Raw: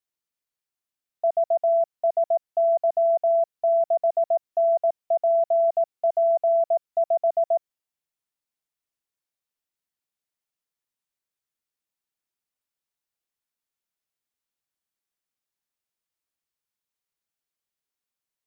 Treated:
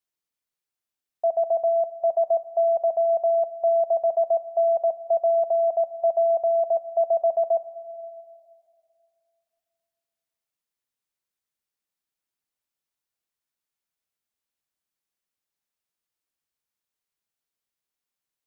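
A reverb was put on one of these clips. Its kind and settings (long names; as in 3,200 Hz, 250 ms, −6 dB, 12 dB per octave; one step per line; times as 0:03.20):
dense smooth reverb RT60 2.5 s, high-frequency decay 0.95×, DRR 12.5 dB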